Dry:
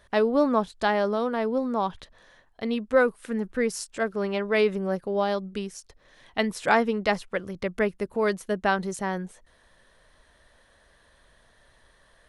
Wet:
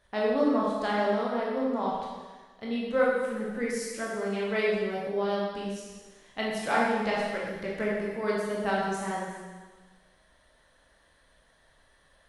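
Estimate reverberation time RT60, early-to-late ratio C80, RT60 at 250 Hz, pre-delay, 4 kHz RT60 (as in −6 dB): 1.4 s, 2.0 dB, 1.3 s, 14 ms, 1.4 s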